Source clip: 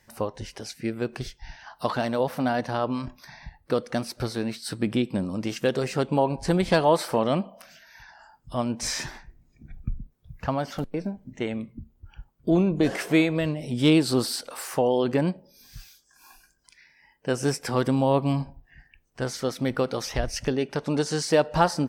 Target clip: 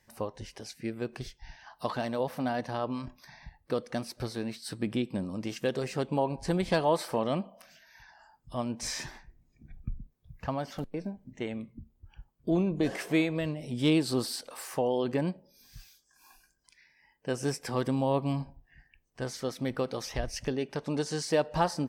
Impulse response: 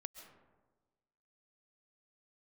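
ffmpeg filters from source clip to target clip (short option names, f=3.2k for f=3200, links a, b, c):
-af "bandreject=f=1.4k:w=13,volume=-6dB"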